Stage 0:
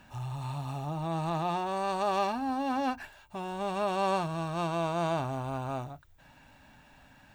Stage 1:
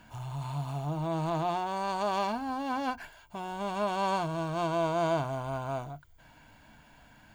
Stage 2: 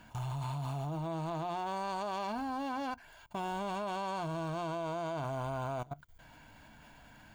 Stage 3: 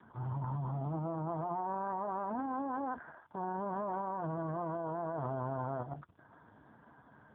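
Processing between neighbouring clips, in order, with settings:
EQ curve with evenly spaced ripples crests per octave 1.8, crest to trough 8 dB
output level in coarse steps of 20 dB; level +3.5 dB
transient designer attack −6 dB, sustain +11 dB; Butterworth low-pass 1,700 Hz 96 dB per octave; level +1.5 dB; AMR narrowband 4.75 kbit/s 8,000 Hz

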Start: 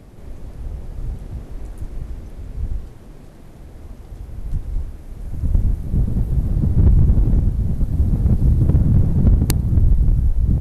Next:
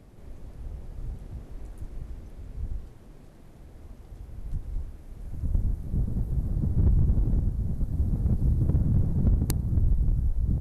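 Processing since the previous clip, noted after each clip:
dynamic equaliser 2,700 Hz, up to −5 dB, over −53 dBFS, Q 1.2
level −9 dB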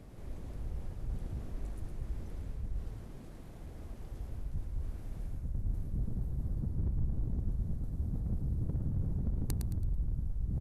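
reversed playback
downward compressor 4 to 1, threshold −33 dBFS, peak gain reduction 12.5 dB
reversed playback
echo with shifted repeats 110 ms, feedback 34%, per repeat −64 Hz, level −5.5 dB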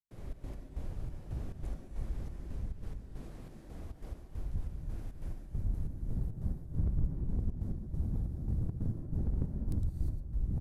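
gate pattern ".xx.x..xxx." 138 BPM −60 dB
reverb whose tail is shaped and stops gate 380 ms rising, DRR 3 dB
highs frequency-modulated by the lows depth 0.52 ms
level +1 dB

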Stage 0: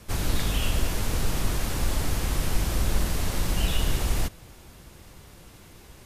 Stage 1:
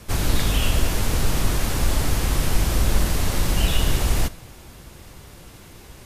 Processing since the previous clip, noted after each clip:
convolution reverb RT60 0.80 s, pre-delay 4 ms, DRR 18 dB
level +5 dB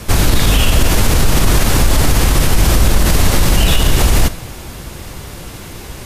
boost into a limiter +14.5 dB
level −1 dB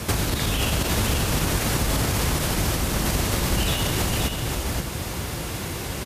high-pass filter 61 Hz
downward compressor 6 to 1, threshold −21 dBFS, peak gain reduction 11 dB
on a send: single-tap delay 527 ms −5 dB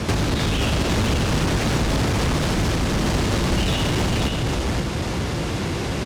low-pass filter 5,900 Hz 12 dB per octave
parametric band 240 Hz +4.5 dB 2.4 octaves
in parallel at −4 dB: wave folding −24 dBFS

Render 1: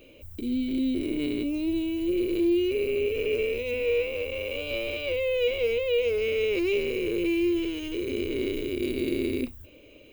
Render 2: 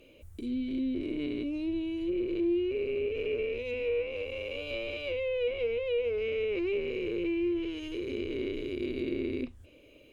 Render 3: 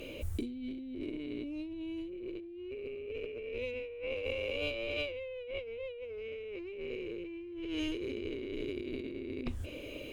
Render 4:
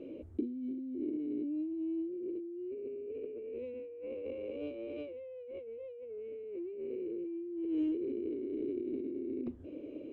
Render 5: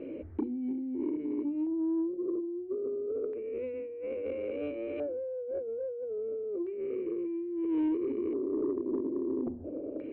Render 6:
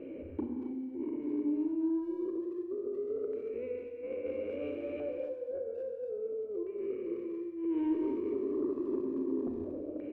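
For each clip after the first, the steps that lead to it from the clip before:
treble cut that deepens with the level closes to 2,300 Hz, closed at −22 dBFS; level −5 dB
compressor whose output falls as the input rises −43 dBFS, ratio −1; level +3 dB
resonant band-pass 310 Hz, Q 2.3; level +4.5 dB
mains-hum notches 60/120/180/240/300/360 Hz; auto-filter low-pass square 0.3 Hz 740–1,900 Hz; soft clipping −28 dBFS, distortion −22 dB; level +5.5 dB
far-end echo of a speakerphone 230 ms, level −12 dB; convolution reverb, pre-delay 30 ms, DRR 3 dB; level −3.5 dB

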